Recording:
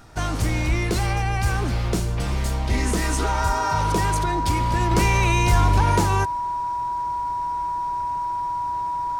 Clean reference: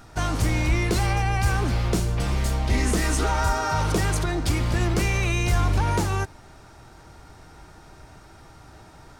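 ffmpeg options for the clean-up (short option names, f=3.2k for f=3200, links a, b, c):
-af "bandreject=f=970:w=30,asetnsamples=n=441:p=0,asendcmd='4.91 volume volume -3.5dB',volume=0dB"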